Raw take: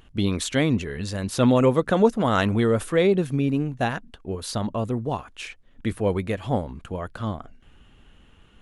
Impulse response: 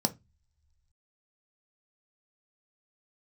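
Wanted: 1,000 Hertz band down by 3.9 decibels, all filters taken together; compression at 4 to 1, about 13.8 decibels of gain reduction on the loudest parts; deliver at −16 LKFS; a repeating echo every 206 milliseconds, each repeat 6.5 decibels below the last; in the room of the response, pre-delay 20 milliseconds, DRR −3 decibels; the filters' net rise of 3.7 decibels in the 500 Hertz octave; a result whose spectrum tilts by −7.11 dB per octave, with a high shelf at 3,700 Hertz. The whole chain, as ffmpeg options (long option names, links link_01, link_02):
-filter_complex "[0:a]equalizer=frequency=500:width_type=o:gain=6,equalizer=frequency=1000:width_type=o:gain=-8.5,highshelf=frequency=3700:gain=4.5,acompressor=threshold=-28dB:ratio=4,aecho=1:1:206|412|618|824|1030|1236:0.473|0.222|0.105|0.0491|0.0231|0.0109,asplit=2[link_01][link_02];[1:a]atrim=start_sample=2205,adelay=20[link_03];[link_02][link_03]afir=irnorm=-1:irlink=0,volume=-3.5dB[link_04];[link_01][link_04]amix=inputs=2:normalize=0,volume=5dB"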